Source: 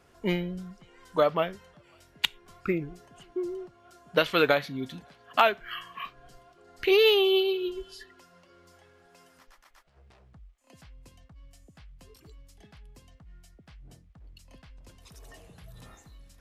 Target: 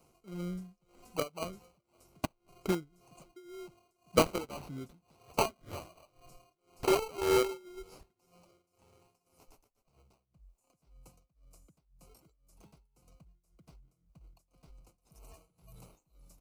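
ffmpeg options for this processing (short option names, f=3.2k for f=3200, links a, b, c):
-filter_complex "[0:a]highshelf=f=6k:g=7.5,aecho=1:1:6:0.44,acrossover=split=320|4700[a][b][c];[b]acrusher=samples=25:mix=1:aa=0.000001[d];[c]acompressor=threshold=-55dB:ratio=6[e];[a][d][e]amix=inputs=3:normalize=0,tremolo=f=1.9:d=0.92,asplit=2[f][g];[g]acrusher=bits=3:mix=0:aa=0.000001,volume=-8dB[h];[f][h]amix=inputs=2:normalize=0,volume=-5dB"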